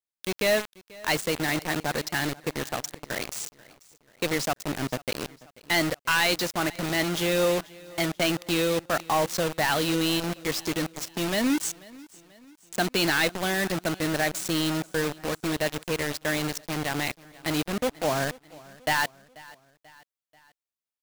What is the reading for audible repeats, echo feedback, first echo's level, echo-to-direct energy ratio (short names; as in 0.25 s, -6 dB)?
3, 49%, -22.0 dB, -21.0 dB